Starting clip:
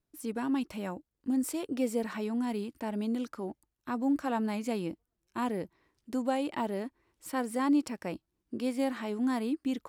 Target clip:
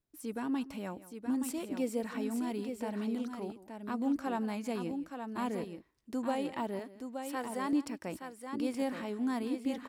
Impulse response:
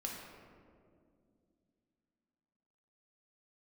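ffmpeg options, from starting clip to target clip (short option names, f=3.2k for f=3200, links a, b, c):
-filter_complex "[0:a]asettb=1/sr,asplit=3[a][b][c];[a]atrim=end=6.794[d];[b]atrim=start=6.79:end=7.73,asetpts=PTS-STARTPTS,afade=t=in:d=0.004:c=qsin,afade=t=out:st=0.936:d=0.004:c=qsin,highpass=f=420:p=1[e];[c]atrim=start=7.726[f];[d][e]acrossfade=d=0.004:c1=hsin:c2=qsin[g];[g][f]acrossfade=d=0.004:c1=qsin:c2=hsin,aecho=1:1:166|873:0.141|0.447,volume=-3.5dB"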